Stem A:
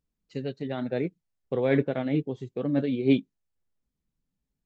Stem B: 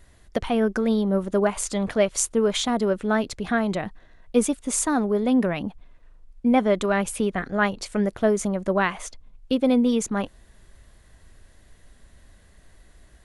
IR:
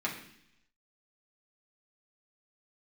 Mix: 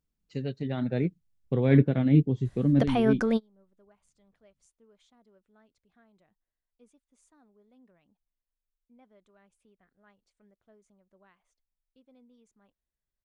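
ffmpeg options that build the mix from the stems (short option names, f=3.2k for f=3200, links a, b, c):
-filter_complex "[0:a]asubboost=boost=8:cutoff=250,volume=-1.5dB,afade=t=out:st=2.57:d=0.45:silence=0.251189,asplit=2[a][b];[1:a]lowpass=8.9k,adelay=2450,volume=-2.5dB[c];[b]apad=whole_len=692129[d];[c][d]sidechaingate=range=-38dB:threshold=-51dB:ratio=16:detection=peak[e];[a][e]amix=inputs=2:normalize=0"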